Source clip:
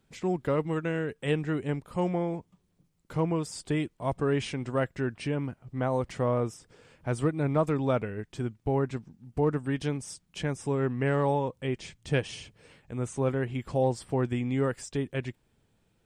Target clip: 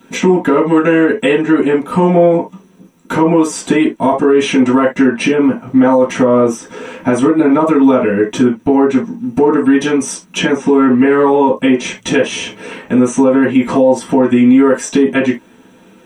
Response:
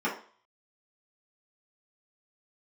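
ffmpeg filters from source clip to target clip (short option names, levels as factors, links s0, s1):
-filter_complex "[0:a]asettb=1/sr,asplit=3[s0][s1][s2];[s0]atrim=end=10.394[s3];[s1]atrim=start=10.39:end=11.48,asetpts=PTS-STARTPTS,afade=t=in:d=0.004:c=qsin,afade=t=out:st=1.086:d=0.004:c=qsin,acrossover=split=4600[s4][s5];[s5]acompressor=threshold=0.001:ratio=4:attack=1:release=60[s6];[s4][s6]amix=inputs=2:normalize=0[s7];[s2]atrim=start=11.476[s8];[s3][s7]acrossfade=d=0.004:c1=hsin:c2=qsin[s9];[s9][s8]acrossfade=d=0.004:c1=qsin:c2=hsin,highshelf=f=5000:g=9,acompressor=threshold=0.0158:ratio=3[s10];[1:a]atrim=start_sample=2205,atrim=end_sample=3969,asetrate=48510,aresample=44100[s11];[s10][s11]afir=irnorm=-1:irlink=0,alimiter=level_in=8.91:limit=0.891:release=50:level=0:latency=1,volume=0.891"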